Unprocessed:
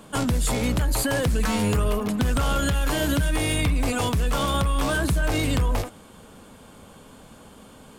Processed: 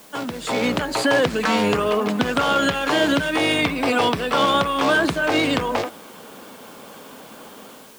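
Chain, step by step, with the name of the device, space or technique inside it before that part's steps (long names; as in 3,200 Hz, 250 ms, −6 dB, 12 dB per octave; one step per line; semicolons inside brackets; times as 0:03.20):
dictaphone (band-pass filter 280–4,400 Hz; automatic gain control gain up to 10 dB; tape wow and flutter 22 cents; white noise bed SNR 27 dB)
0:03.74–0:04.38: notch filter 6,700 Hz, Q 6.1
level −1.5 dB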